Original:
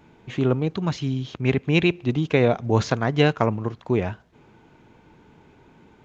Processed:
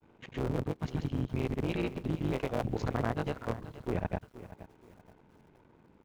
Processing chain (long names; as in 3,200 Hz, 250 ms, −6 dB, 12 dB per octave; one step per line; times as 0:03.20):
sub-harmonics by changed cycles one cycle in 3, muted
high-shelf EQ 2,100 Hz −9.5 dB
output level in coarse steps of 15 dB
granular cloud, grains 20 per second, spray 100 ms, pitch spread up and down by 0 semitones
feedback echo at a low word length 474 ms, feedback 35%, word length 9 bits, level −15 dB